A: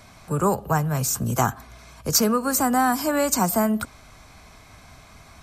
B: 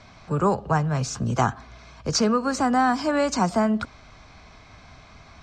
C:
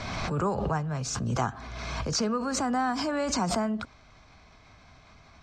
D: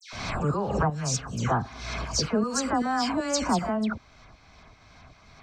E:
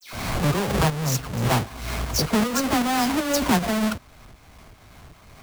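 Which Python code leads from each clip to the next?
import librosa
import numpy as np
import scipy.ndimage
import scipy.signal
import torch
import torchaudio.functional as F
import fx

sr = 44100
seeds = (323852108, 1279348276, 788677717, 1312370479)

y1 = scipy.signal.sosfilt(scipy.signal.butter(4, 5600.0, 'lowpass', fs=sr, output='sos'), x)
y2 = fx.pre_swell(y1, sr, db_per_s=26.0)
y2 = F.gain(torch.from_numpy(y2), -7.5).numpy()
y3 = fx.tremolo_shape(y2, sr, shape='saw_up', hz=2.6, depth_pct=65)
y3 = fx.dispersion(y3, sr, late='lows', ms=130.0, hz=2100.0)
y3 = F.gain(torch.from_numpy(y3), 5.0).numpy()
y4 = fx.halfwave_hold(y3, sr)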